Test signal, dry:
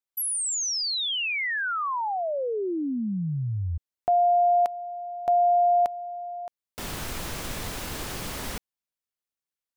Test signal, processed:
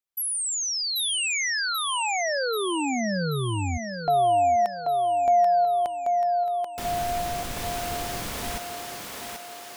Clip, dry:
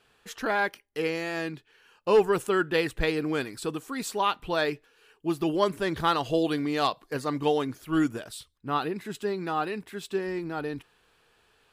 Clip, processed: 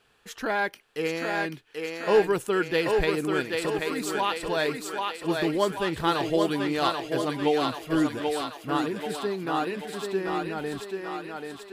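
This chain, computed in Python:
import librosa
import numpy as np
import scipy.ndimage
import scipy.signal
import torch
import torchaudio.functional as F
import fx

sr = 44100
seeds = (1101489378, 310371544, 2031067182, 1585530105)

y = fx.echo_thinned(x, sr, ms=785, feedback_pct=60, hz=310.0, wet_db=-3.0)
y = fx.dynamic_eq(y, sr, hz=1200.0, q=4.4, threshold_db=-40.0, ratio=4.0, max_db=-4)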